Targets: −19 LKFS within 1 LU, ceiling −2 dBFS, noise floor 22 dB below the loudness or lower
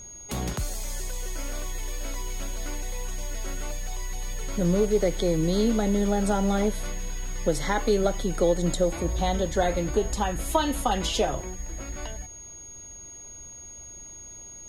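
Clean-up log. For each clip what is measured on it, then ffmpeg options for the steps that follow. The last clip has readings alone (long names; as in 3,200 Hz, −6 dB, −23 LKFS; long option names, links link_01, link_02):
interfering tone 6,600 Hz; level of the tone −41 dBFS; integrated loudness −27.5 LKFS; sample peak −9.0 dBFS; target loudness −19.0 LKFS
→ -af "bandreject=frequency=6600:width=30"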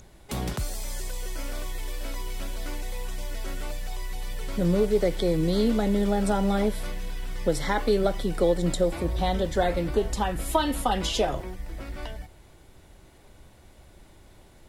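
interfering tone none found; integrated loudness −27.5 LKFS; sample peak −9.0 dBFS; target loudness −19.0 LKFS
→ -af "volume=8.5dB,alimiter=limit=-2dB:level=0:latency=1"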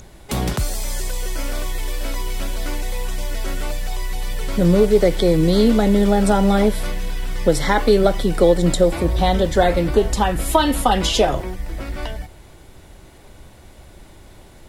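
integrated loudness −19.5 LKFS; sample peak −2.0 dBFS; background noise floor −45 dBFS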